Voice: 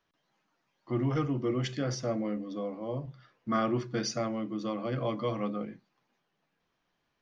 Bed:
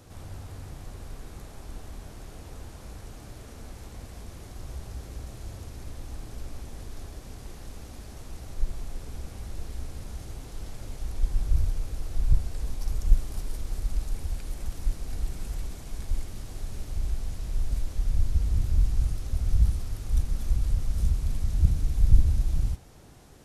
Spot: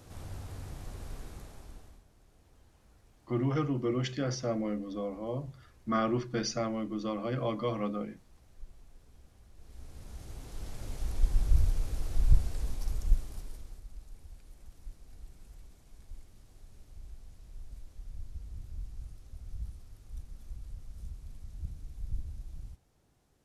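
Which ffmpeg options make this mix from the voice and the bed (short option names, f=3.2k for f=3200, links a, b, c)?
-filter_complex "[0:a]adelay=2400,volume=-0.5dB[a];[1:a]volume=17dB,afade=t=out:st=1.18:d=0.86:silence=0.125893,afade=t=in:st=9.56:d=1.43:silence=0.112202,afade=t=out:st=12.38:d=1.45:silence=0.133352[b];[a][b]amix=inputs=2:normalize=0"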